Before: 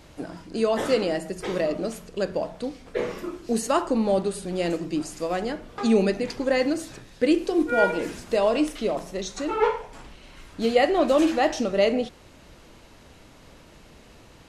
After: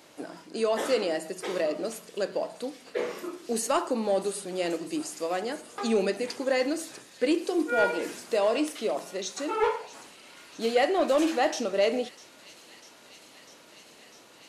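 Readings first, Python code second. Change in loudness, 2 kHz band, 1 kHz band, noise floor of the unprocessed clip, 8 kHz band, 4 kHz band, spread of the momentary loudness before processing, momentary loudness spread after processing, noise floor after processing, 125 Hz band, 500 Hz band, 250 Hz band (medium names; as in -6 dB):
-3.5 dB, -2.5 dB, -3.0 dB, -51 dBFS, +1.0 dB, -1.5 dB, 11 LU, 13 LU, -53 dBFS, -11.0 dB, -3.5 dB, -6.0 dB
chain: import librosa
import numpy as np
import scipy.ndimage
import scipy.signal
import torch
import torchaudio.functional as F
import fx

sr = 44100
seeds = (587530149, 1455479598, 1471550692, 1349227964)

y = scipy.signal.sosfilt(scipy.signal.butter(2, 290.0, 'highpass', fs=sr, output='sos'), x)
y = fx.high_shelf(y, sr, hz=6900.0, db=5.5)
y = 10.0 ** (-11.5 / 20.0) * np.tanh(y / 10.0 ** (-11.5 / 20.0))
y = fx.echo_wet_highpass(y, sr, ms=649, feedback_pct=84, hz=3100.0, wet_db=-16.0)
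y = F.gain(torch.from_numpy(y), -2.0).numpy()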